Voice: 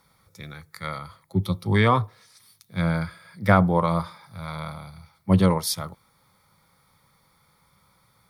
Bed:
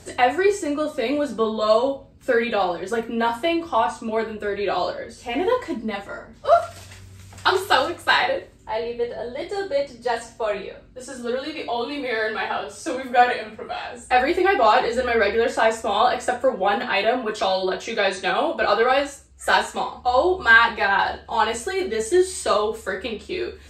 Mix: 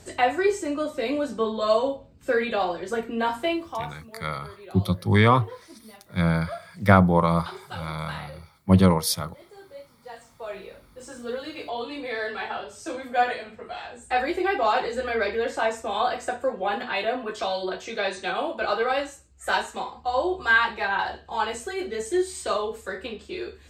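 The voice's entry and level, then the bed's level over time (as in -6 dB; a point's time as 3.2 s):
3.40 s, +1.5 dB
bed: 3.51 s -3.5 dB
4.09 s -20.5 dB
9.97 s -20.5 dB
10.76 s -6 dB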